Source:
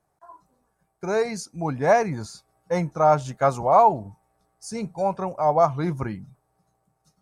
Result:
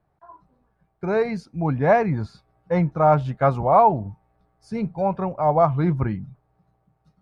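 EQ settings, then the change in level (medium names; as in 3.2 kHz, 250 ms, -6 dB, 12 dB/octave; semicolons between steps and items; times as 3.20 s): distance through air 450 m; bass shelf 260 Hz +9 dB; treble shelf 2.2 kHz +11.5 dB; 0.0 dB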